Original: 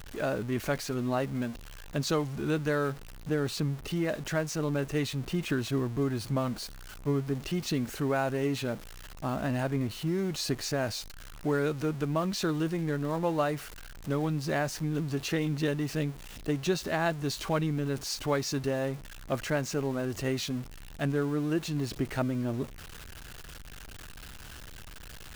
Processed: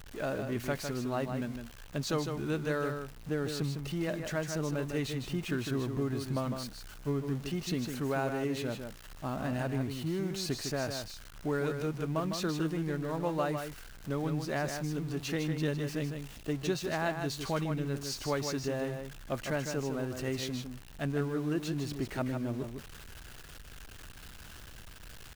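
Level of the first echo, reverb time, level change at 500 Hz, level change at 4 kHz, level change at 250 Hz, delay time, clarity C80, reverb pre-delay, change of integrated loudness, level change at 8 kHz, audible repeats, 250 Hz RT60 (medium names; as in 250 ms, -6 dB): -6.5 dB, no reverb, -3.0 dB, -3.0 dB, -3.0 dB, 155 ms, no reverb, no reverb, -3.0 dB, -3.0 dB, 1, no reverb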